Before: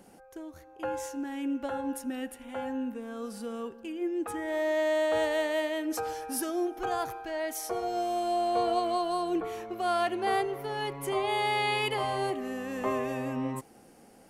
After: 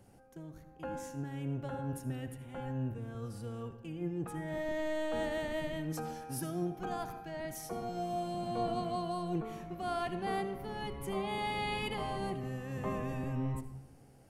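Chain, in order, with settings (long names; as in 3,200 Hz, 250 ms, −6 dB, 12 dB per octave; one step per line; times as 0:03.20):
sub-octave generator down 1 octave, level +3 dB
low-shelf EQ 160 Hz +3 dB
on a send: convolution reverb RT60 0.75 s, pre-delay 60 ms, DRR 11 dB
on the sum: level −8.5 dB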